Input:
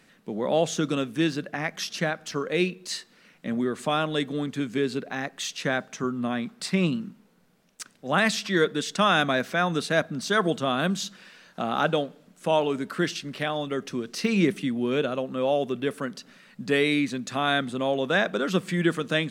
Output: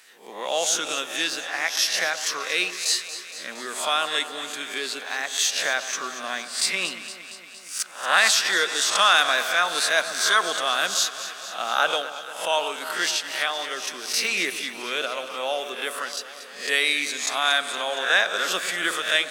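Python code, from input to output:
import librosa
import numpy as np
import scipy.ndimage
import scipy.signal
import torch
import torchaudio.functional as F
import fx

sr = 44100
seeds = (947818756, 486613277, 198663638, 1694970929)

p1 = fx.spec_swells(x, sr, rise_s=0.44)
p2 = scipy.signal.sosfilt(scipy.signal.butter(2, 830.0, 'highpass', fs=sr, output='sos'), p1)
p3 = fx.high_shelf(p2, sr, hz=4200.0, db=10.0)
p4 = p3 + fx.echo_alternate(p3, sr, ms=116, hz=1300.0, feedback_pct=82, wet_db=-11.0, dry=0)
y = p4 * 10.0 ** (2.5 / 20.0)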